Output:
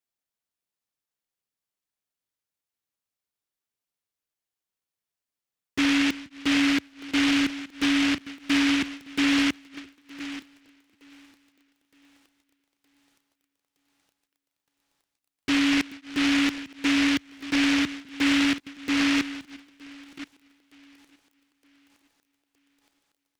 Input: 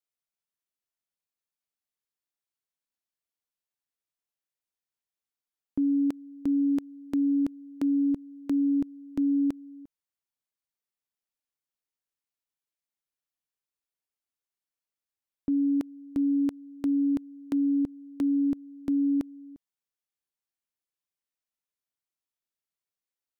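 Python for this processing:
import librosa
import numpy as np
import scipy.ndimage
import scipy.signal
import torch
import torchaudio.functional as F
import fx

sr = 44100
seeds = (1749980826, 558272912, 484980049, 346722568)

p1 = fx.reverse_delay(x, sr, ms=547, wet_db=-14.0)
p2 = fx.low_shelf(p1, sr, hz=360.0, db=-12.0)
p3 = np.clip(p2, -10.0 ** (-29.5 / 20.0), 10.0 ** (-29.5 / 20.0))
p4 = scipy.signal.sosfilt(scipy.signal.butter(4, 57.0, 'highpass', fs=sr, output='sos'), p3)
p5 = fx.env_flanger(p4, sr, rest_ms=10.0, full_db=-33.5)
p6 = fx.peak_eq(p5, sr, hz=100.0, db=8.5, octaves=2.8)
p7 = p6 + fx.echo_thinned(p6, sr, ms=917, feedback_pct=82, hz=530.0, wet_db=-16.0, dry=0)
p8 = fx.noise_mod_delay(p7, sr, seeds[0], noise_hz=2200.0, depth_ms=0.32)
y = F.gain(torch.from_numpy(p8), 7.0).numpy()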